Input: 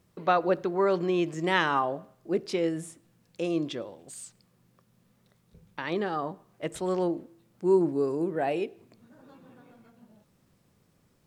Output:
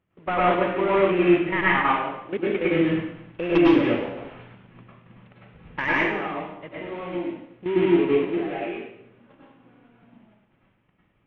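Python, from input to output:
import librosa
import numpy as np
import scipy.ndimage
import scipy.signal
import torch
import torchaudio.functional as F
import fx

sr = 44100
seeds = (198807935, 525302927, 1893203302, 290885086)

y = fx.cvsd(x, sr, bps=16000)
y = fx.dynamic_eq(y, sr, hz=2200.0, q=1.9, threshold_db=-52.0, ratio=4.0, max_db=7)
y = fx.level_steps(y, sr, step_db=13)
y = fx.fold_sine(y, sr, drive_db=7, ceiling_db=-17.5, at=(2.71, 5.93))
y = fx.rev_plate(y, sr, seeds[0], rt60_s=0.77, hf_ratio=0.95, predelay_ms=90, drr_db=-7.0)
y = y * 10.0 ** (1.5 / 20.0)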